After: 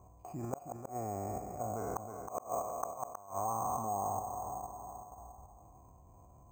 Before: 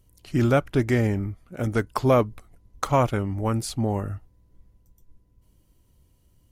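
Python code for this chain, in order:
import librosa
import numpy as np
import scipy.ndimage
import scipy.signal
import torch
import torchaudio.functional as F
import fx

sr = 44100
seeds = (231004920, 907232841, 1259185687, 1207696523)

p1 = fx.spec_trails(x, sr, decay_s=2.02)
p2 = scipy.signal.sosfilt(scipy.signal.butter(4, 45.0, 'highpass', fs=sr, output='sos'), p1)
p3 = fx.low_shelf(p2, sr, hz=350.0, db=7.5)
p4 = fx.level_steps(p3, sr, step_db=12)
p5 = fx.formant_cascade(p4, sr, vowel='a')
p6 = fx.gate_flip(p5, sr, shuts_db=-28.0, range_db=-39)
p7 = p6 + fx.echo_single(p6, sr, ms=317, db=-14.5, dry=0)
p8 = np.repeat(scipy.signal.resample_poly(p7, 1, 6), 6)[:len(p7)]
p9 = fx.env_flatten(p8, sr, amount_pct=50)
y = p9 * 10.0 ** (4.0 / 20.0)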